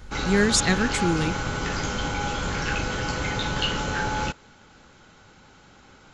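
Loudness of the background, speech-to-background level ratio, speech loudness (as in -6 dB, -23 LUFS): -27.5 LUFS, 4.5 dB, -23.0 LUFS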